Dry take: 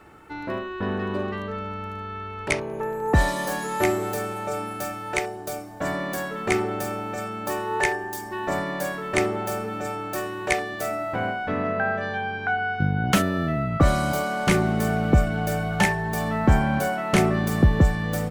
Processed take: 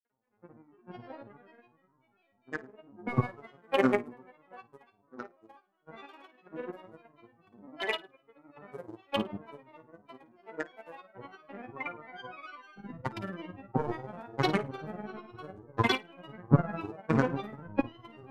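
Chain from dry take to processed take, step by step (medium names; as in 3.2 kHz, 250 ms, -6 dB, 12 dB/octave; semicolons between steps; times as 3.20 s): local Wiener filter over 9 samples; three-band isolator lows -16 dB, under 190 Hz, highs -16 dB, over 2.5 kHz; small resonant body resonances 260/1600/3000 Hz, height 8 dB, ringing for 90 ms; robot voice 198 Hz; granulator, pitch spread up and down by 12 st; brick-wall FIR low-pass 14 kHz; on a send: flutter echo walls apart 9.2 m, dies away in 0.31 s; on the sum: upward expansion 2.5:1, over -40 dBFS; trim +3 dB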